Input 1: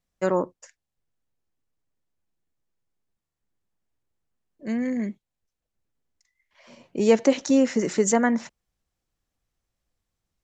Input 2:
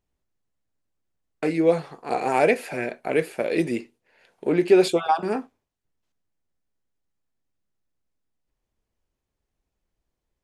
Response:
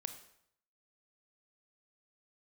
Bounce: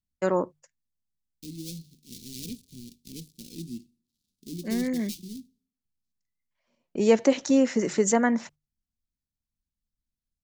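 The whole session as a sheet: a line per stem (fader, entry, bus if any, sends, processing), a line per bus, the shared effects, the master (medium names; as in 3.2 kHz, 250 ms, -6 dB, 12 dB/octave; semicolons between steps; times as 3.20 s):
-1.5 dB, 0.00 s, no send, gate -44 dBFS, range -23 dB
-7.5 dB, 0.00 s, send -15.5 dB, dead-time distortion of 0.29 ms; elliptic band-stop 240–4100 Hz, stop band 70 dB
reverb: on, RT60 0.70 s, pre-delay 23 ms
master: hum notches 50/100/150 Hz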